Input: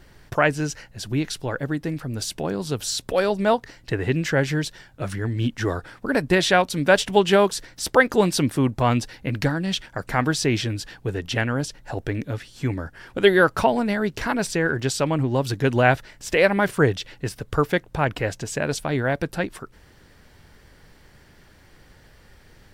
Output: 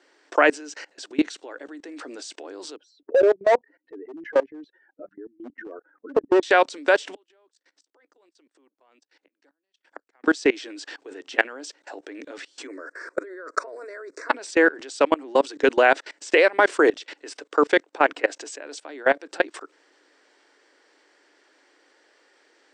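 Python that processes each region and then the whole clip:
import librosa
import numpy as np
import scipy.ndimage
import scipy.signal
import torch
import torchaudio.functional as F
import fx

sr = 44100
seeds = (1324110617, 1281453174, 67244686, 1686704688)

y = fx.chain(x, sr, fx.low_shelf(hz=82.0, db=-3.5),
    fx.notch(hz=5000.0, q=11.0), at=(1.14, 2.0))
y = fx.chain(y, sr, fx.spec_expand(power=2.3),
    fx.lowpass(hz=1300.0, slope=12),
    fx.clip_hard(threshold_db=-18.0), at=(2.76, 6.43))
y = fx.chain(y, sr, fx.highpass(hz=120.0, slope=12),
    fx.gate_flip(shuts_db=-22.0, range_db=-28),
    fx.level_steps(step_db=17), at=(7.14, 10.24))
y = fx.chain(y, sr, fx.peak_eq(hz=3100.0, db=-10.5, octaves=0.66),
    fx.over_compress(threshold_db=-24.0, ratio=-0.5),
    fx.fixed_phaser(hz=820.0, stages=6), at=(12.67, 14.29))
y = scipy.signal.sosfilt(scipy.signal.cheby1(5, 1.0, [290.0, 8300.0], 'bandpass', fs=sr, output='sos'), y)
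y = fx.level_steps(y, sr, step_db=23)
y = y * 10.0 ** (8.0 / 20.0)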